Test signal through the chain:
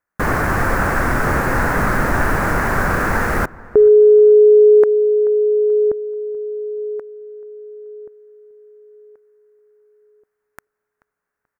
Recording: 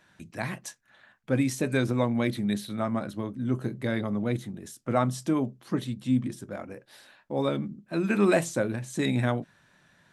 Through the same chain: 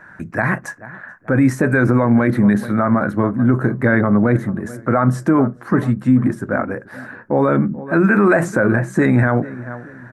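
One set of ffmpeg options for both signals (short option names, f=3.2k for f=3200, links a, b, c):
-filter_complex "[0:a]highshelf=f=2.3k:t=q:w=3:g=-13,asplit=2[a][b];[b]adelay=433,lowpass=f=1.6k:p=1,volume=-20dB,asplit=2[c][d];[d]adelay=433,lowpass=f=1.6k:p=1,volume=0.37,asplit=2[e][f];[f]adelay=433,lowpass=f=1.6k:p=1,volume=0.37[g];[a][c][e][g]amix=inputs=4:normalize=0,alimiter=level_in=19.5dB:limit=-1dB:release=50:level=0:latency=1,volume=-4dB"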